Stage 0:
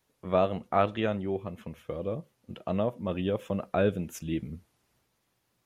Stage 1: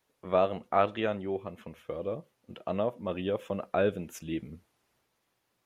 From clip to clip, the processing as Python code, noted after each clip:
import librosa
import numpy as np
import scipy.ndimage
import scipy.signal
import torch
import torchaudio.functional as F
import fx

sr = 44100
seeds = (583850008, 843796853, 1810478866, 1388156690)

y = fx.bass_treble(x, sr, bass_db=-7, treble_db=-3)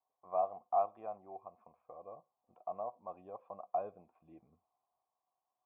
y = fx.formant_cascade(x, sr, vowel='a')
y = y * 10.0 ** (1.5 / 20.0)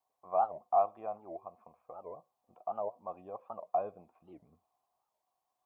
y = fx.record_warp(x, sr, rpm=78.0, depth_cents=250.0)
y = y * 10.0 ** (4.0 / 20.0)